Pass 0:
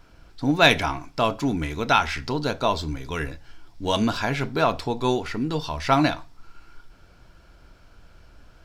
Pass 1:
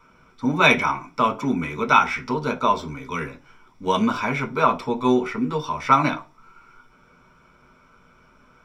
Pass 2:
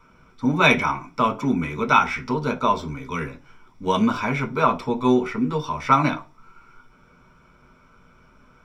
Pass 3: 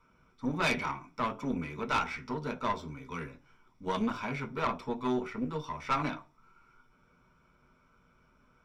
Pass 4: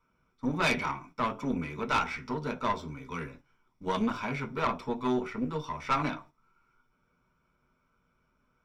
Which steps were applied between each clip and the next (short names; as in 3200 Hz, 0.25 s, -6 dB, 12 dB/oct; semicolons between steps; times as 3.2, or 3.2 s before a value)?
reverb RT60 0.25 s, pre-delay 3 ms, DRR 4 dB; gain -8 dB
low shelf 210 Hz +5.5 dB; gain -1 dB
tube stage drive 14 dB, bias 0.65; gain -8 dB
gate -53 dBFS, range -9 dB; gain +2 dB